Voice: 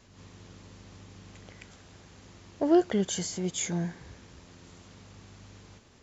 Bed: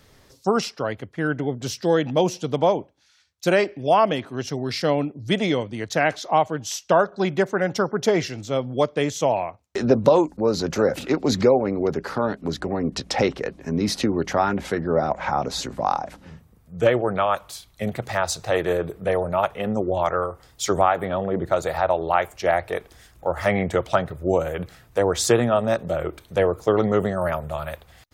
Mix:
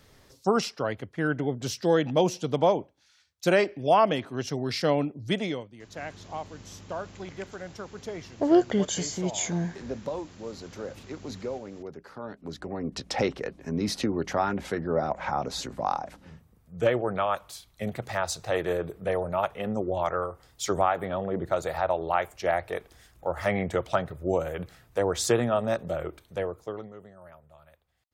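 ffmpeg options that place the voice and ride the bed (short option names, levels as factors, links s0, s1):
-filter_complex "[0:a]adelay=5800,volume=1.26[s0];[1:a]volume=2.82,afade=t=out:st=5.16:d=0.55:silence=0.188365,afade=t=in:st=12.14:d=1.06:silence=0.251189,afade=t=out:st=25.89:d=1.04:silence=0.0944061[s1];[s0][s1]amix=inputs=2:normalize=0"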